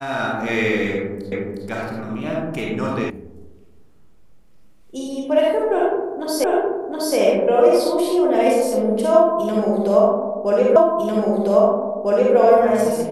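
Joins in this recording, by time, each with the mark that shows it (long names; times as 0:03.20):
0:01.32: the same again, the last 0.36 s
0:03.10: cut off before it has died away
0:06.44: the same again, the last 0.72 s
0:10.76: the same again, the last 1.6 s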